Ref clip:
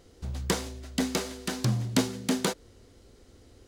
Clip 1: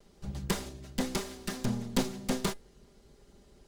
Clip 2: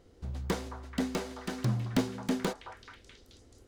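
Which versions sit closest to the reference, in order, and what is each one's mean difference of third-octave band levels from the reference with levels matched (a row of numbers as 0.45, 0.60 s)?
1, 2; 2.5, 3.5 dB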